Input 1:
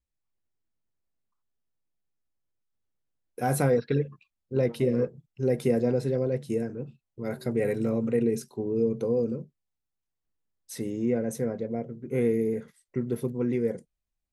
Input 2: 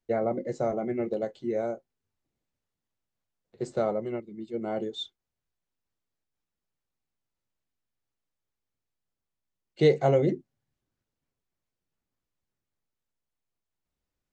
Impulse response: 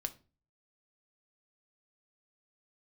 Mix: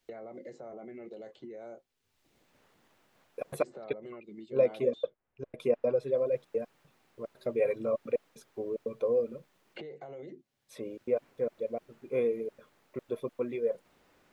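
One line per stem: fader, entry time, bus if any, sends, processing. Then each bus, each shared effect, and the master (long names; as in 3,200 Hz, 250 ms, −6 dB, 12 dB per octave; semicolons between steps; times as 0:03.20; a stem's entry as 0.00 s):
−8.5 dB, 0.00 s, no send, reverb reduction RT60 0.85 s; gate pattern "xxxx.x..x.xx.xx" 149 BPM −60 dB; hollow resonant body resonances 590/1,100/2,400/3,400 Hz, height 17 dB, ringing for 25 ms
−3.0 dB, 0.00 s, no send, downward compressor 6 to 1, threshold −31 dBFS, peak gain reduction 14.5 dB; brickwall limiter −33 dBFS, peak gain reduction 11 dB; multiband upward and downward compressor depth 100%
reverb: not used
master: bass and treble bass −7 dB, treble −8 dB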